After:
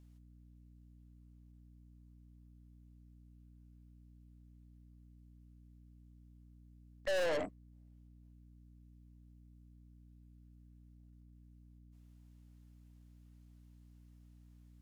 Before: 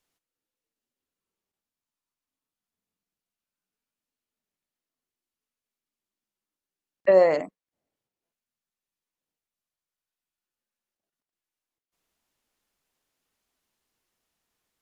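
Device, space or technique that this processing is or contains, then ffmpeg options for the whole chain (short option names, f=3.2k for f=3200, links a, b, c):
valve amplifier with mains hum: -af "aeval=exprs='(tanh(39.8*val(0)+0.45)-tanh(0.45))/39.8':c=same,aeval=exprs='val(0)+0.00126*(sin(2*PI*60*n/s)+sin(2*PI*2*60*n/s)/2+sin(2*PI*3*60*n/s)/3+sin(2*PI*4*60*n/s)/4+sin(2*PI*5*60*n/s)/5)':c=same"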